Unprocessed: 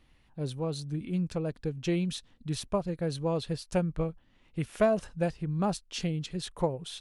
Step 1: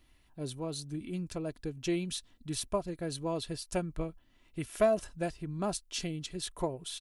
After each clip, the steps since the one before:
high-shelf EQ 6,800 Hz +11.5 dB
comb filter 3 ms, depth 39%
level −3.5 dB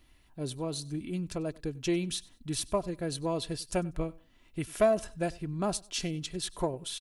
in parallel at −8.5 dB: soft clipping −24.5 dBFS, distortion −14 dB
on the sum: repeating echo 96 ms, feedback 27%, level −23 dB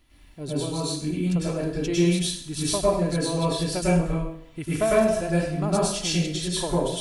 dense smooth reverb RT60 0.67 s, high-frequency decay 0.9×, pre-delay 90 ms, DRR −8 dB

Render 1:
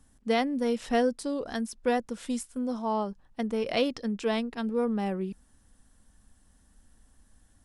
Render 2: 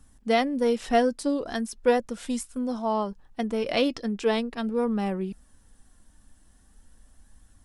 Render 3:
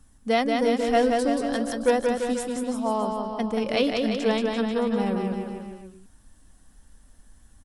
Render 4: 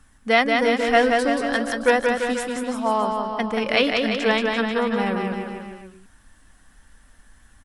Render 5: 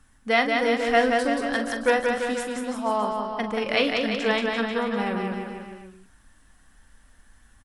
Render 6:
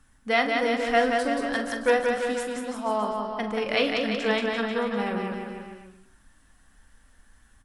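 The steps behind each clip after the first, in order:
flanger 0.4 Hz, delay 0.7 ms, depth 2.8 ms, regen +69%; level +7.5 dB
bouncing-ball delay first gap 180 ms, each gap 0.9×, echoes 5
parametric band 1,800 Hz +11.5 dB 2 octaves
double-tracking delay 43 ms −10 dB; level −3.5 dB
convolution reverb RT60 0.70 s, pre-delay 8 ms, DRR 12 dB; level −2 dB

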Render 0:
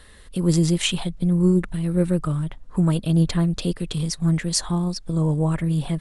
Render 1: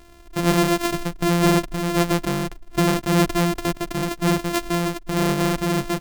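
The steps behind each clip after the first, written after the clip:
samples sorted by size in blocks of 128 samples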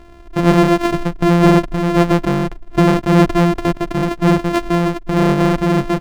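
low-pass filter 1,700 Hz 6 dB per octave
level +7.5 dB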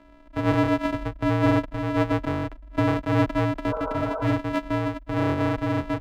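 healed spectral selection 0:03.73–0:04.30, 460–1,700 Hz
frequency shifter −57 Hz
bass and treble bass −5 dB, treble −10 dB
level −7.5 dB

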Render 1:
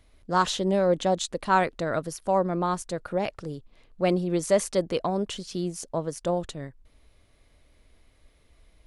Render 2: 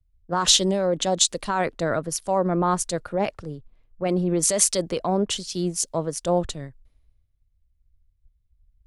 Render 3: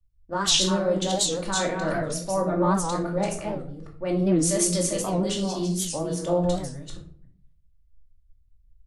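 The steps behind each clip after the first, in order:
brickwall limiter −20 dBFS, peak gain reduction 11 dB; dynamic equaliser 7,100 Hz, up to +4 dB, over −47 dBFS, Q 0.7; multiband upward and downward expander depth 100%; level +5.5 dB
delay that plays each chunk backwards 279 ms, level −4.5 dB; rectangular room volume 490 cubic metres, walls furnished, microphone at 2.5 metres; wow of a warped record 78 rpm, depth 160 cents; level −7 dB

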